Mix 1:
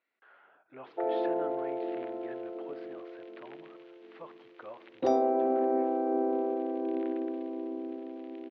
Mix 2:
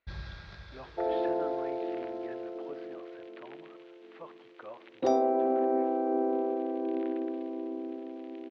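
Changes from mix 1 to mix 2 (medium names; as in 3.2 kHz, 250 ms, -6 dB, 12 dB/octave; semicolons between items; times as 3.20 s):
first sound: unmuted; second sound: remove distance through air 80 m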